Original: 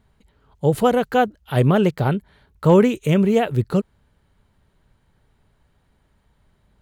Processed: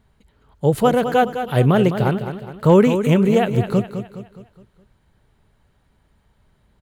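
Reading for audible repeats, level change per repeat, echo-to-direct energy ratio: 4, -7.0 dB, -8.5 dB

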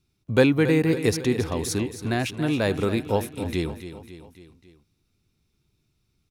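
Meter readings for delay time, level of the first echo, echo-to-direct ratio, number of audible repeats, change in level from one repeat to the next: 274 ms, -12.0 dB, -10.5 dB, 4, -5.0 dB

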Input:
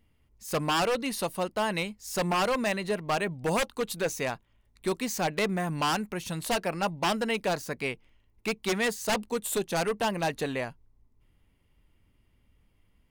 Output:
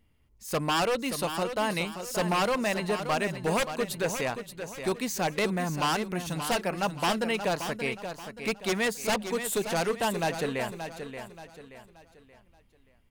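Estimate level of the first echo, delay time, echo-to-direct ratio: -9.0 dB, 578 ms, -8.5 dB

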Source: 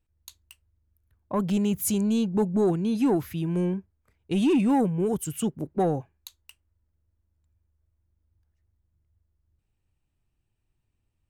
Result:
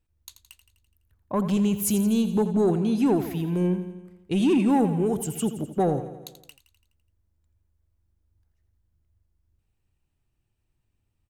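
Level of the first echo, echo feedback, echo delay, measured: -11.5 dB, 59%, 84 ms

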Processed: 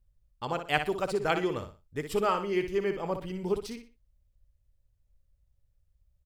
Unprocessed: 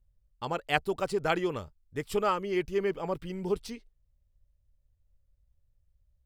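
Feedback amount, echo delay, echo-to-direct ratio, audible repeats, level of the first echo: 29%, 60 ms, -8.0 dB, 3, -8.5 dB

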